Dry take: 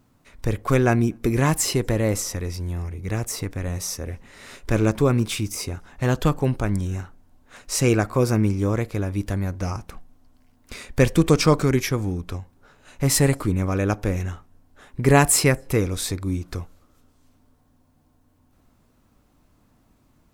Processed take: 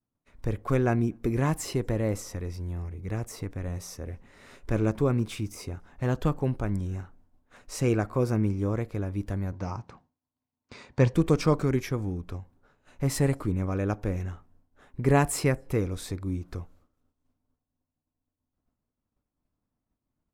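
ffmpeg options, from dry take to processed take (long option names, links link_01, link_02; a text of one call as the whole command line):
ffmpeg -i in.wav -filter_complex "[0:a]asettb=1/sr,asplit=3[link_01][link_02][link_03];[link_01]atrim=end=9.524[link_04];[link_02]atrim=start=9.52:end=11.14,asetpts=PTS-STARTPTS,afade=type=in:duration=0.004:curve=qsin,afade=type=out:start_time=1.616:duration=0.004:curve=qsin,highpass=100,equalizer=frequency=120:width_type=q:width=4:gain=7,equalizer=frequency=940:width_type=q:width=4:gain=7,equalizer=frequency=4400:width_type=q:width=4:gain=4,lowpass=frequency=7200:width=0.5412,lowpass=frequency=7200:width=1.3066[link_05];[link_03]atrim=start=11.136[link_06];[link_04][link_05]acrossfade=duration=0.004:curve1=hsin:curve2=qsin[link_07];[link_07][link_06]acrossfade=duration=0.004:curve1=qsin:curve2=hsin,agate=range=-33dB:threshold=-48dB:ratio=3:detection=peak,highshelf=frequency=2100:gain=-8.5,volume=-5.5dB" out.wav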